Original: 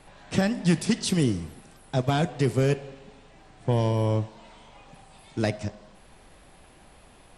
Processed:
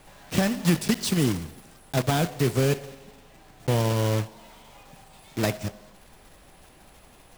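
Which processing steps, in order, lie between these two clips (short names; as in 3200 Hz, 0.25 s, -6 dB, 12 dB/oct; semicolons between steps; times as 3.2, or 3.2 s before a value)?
block floating point 3-bit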